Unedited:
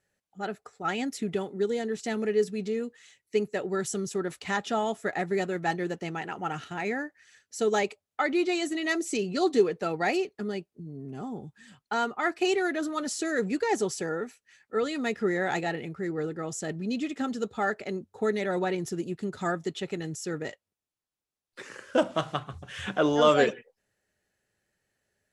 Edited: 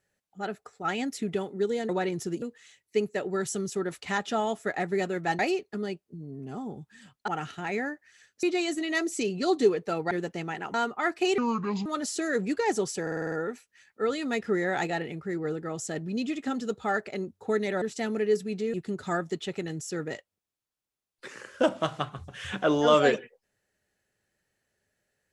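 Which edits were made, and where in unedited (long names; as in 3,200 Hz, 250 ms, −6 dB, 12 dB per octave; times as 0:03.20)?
0:01.89–0:02.81: swap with 0:18.55–0:19.08
0:05.78–0:06.41: swap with 0:10.05–0:11.94
0:07.56–0:08.37: remove
0:12.58–0:12.89: play speed 65%
0:14.05: stutter 0.05 s, 7 plays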